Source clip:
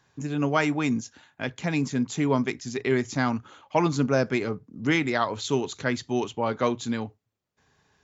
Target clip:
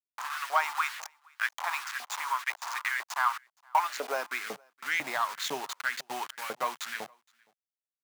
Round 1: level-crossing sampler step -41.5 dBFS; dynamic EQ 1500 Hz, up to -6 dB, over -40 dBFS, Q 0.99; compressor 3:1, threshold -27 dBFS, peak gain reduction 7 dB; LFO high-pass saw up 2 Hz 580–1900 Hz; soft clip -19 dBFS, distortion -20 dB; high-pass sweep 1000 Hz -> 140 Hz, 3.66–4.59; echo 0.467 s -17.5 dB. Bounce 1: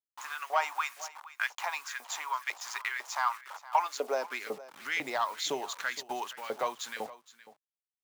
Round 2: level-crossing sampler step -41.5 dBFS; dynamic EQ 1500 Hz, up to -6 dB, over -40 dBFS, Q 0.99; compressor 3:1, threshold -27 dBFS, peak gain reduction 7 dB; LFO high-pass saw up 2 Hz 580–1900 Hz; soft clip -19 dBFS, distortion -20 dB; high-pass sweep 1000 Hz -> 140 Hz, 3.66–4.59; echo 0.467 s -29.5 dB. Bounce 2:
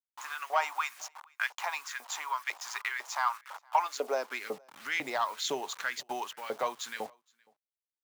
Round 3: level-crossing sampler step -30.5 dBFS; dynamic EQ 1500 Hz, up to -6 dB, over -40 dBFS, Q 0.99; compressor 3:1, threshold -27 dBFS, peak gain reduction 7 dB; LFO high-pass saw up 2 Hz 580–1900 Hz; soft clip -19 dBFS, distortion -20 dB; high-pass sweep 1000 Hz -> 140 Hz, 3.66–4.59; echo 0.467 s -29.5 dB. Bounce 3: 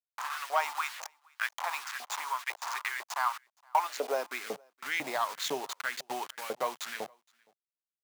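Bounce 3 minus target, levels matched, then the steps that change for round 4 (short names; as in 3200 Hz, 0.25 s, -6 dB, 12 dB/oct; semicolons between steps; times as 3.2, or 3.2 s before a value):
500 Hz band +5.0 dB
change: dynamic EQ 490 Hz, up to -6 dB, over -40 dBFS, Q 0.99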